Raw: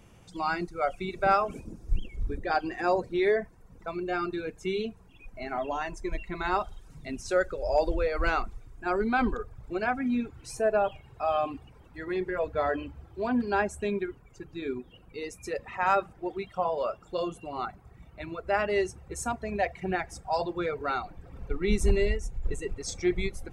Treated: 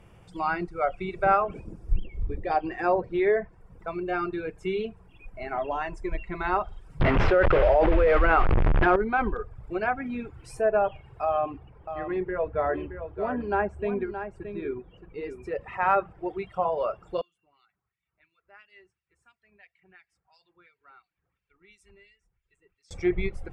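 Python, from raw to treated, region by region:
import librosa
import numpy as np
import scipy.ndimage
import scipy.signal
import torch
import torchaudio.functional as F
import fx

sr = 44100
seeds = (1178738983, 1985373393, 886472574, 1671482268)

y = fx.chain(x, sr, fx.peak_eq(hz=1500.0, db=-11.5, octaves=0.3),
    fx.doubler(ms=13.0, db=-13.5), at=(2.04, 2.67))
y = fx.chain(y, sr, fx.delta_mod(bps=64000, step_db=-30.0),
    fx.air_absorb(metres=170.0),
    fx.env_flatten(amount_pct=100), at=(7.0, 8.96))
y = fx.chain(y, sr, fx.lowpass(hz=1800.0, slope=6),
    fx.echo_single(ms=621, db=-9.5), at=(11.25, 15.61))
y = fx.chain(y, sr, fx.filter_lfo_bandpass(shape='sine', hz=2.9, low_hz=840.0, high_hz=4800.0, q=1.1),
    fx.tone_stack(knobs='6-0-2'), at=(17.21, 22.91))
y = fx.graphic_eq_31(y, sr, hz=(250, 4000, 6300), db=(-9, -7, -9))
y = fx.env_lowpass_down(y, sr, base_hz=2700.0, full_db=-22.5)
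y = fx.high_shelf(y, sr, hz=4600.0, db=-7.0)
y = F.gain(torch.from_numpy(y), 2.5).numpy()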